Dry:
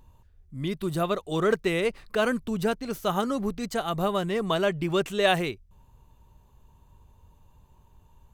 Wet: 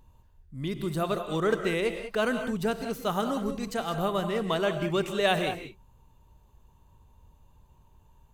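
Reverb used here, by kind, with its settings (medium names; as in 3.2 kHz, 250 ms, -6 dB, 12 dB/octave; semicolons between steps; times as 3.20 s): gated-style reverb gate 220 ms rising, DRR 7 dB; trim -2.5 dB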